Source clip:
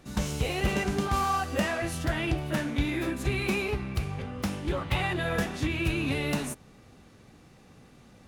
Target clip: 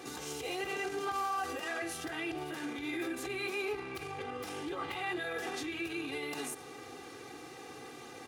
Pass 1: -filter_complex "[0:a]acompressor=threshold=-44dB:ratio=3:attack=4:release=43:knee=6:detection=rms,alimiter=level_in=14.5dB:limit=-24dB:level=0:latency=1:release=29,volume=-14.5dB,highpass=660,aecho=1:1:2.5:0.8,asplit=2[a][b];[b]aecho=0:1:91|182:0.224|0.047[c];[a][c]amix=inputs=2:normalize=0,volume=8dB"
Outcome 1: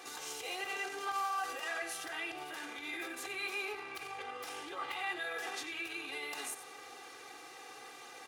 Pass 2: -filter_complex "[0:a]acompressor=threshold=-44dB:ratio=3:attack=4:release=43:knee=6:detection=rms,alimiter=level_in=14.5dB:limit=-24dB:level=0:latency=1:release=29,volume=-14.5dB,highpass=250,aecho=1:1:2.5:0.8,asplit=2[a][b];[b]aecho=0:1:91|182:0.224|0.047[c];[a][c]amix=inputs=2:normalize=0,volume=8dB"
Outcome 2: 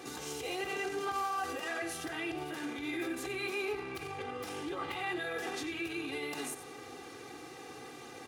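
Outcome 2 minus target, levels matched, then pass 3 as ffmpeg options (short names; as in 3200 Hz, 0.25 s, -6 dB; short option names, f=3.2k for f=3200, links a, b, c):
echo-to-direct +9.5 dB
-filter_complex "[0:a]acompressor=threshold=-44dB:ratio=3:attack=4:release=43:knee=6:detection=rms,alimiter=level_in=14.5dB:limit=-24dB:level=0:latency=1:release=29,volume=-14.5dB,highpass=250,aecho=1:1:2.5:0.8,asplit=2[a][b];[b]aecho=0:1:91|182:0.075|0.0157[c];[a][c]amix=inputs=2:normalize=0,volume=8dB"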